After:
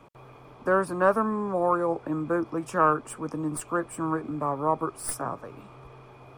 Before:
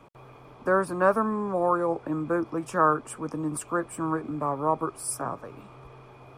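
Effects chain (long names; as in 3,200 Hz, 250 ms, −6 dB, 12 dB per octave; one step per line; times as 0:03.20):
stylus tracing distortion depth 0.024 ms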